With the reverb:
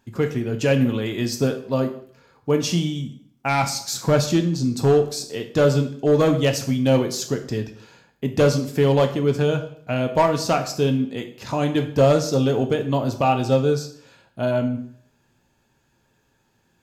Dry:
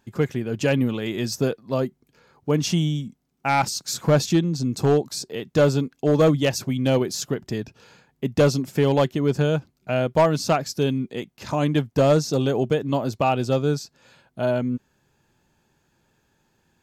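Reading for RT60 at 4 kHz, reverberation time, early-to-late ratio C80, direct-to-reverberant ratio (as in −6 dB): 0.50 s, 0.55 s, 14.5 dB, 4.5 dB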